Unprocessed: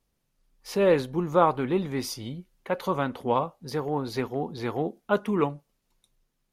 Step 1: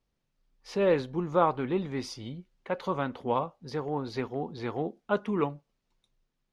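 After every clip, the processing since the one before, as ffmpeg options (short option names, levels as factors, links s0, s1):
-af "lowpass=5600,volume=0.668"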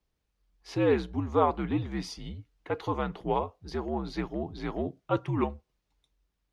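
-af "afreqshift=-73"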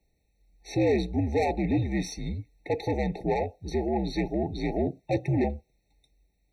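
-af "asoftclip=type=tanh:threshold=0.0398,afftfilt=real='re*eq(mod(floor(b*sr/1024/900),2),0)':imag='im*eq(mod(floor(b*sr/1024/900),2),0)':win_size=1024:overlap=0.75,volume=2.51"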